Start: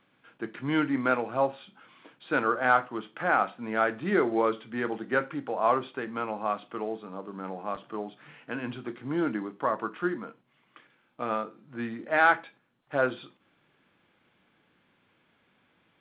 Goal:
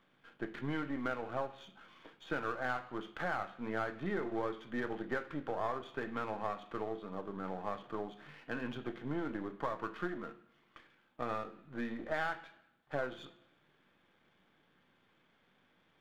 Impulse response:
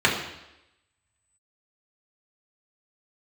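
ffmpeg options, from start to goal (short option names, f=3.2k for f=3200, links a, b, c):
-filter_complex "[0:a]aeval=exprs='if(lt(val(0),0),0.447*val(0),val(0))':c=same,acompressor=threshold=-32dB:ratio=6,asplit=2[a][b];[b]highshelf=f=3.2k:g=12[c];[1:a]atrim=start_sample=2205[d];[c][d]afir=irnorm=-1:irlink=0,volume=-30dB[e];[a][e]amix=inputs=2:normalize=0,volume=-1.5dB"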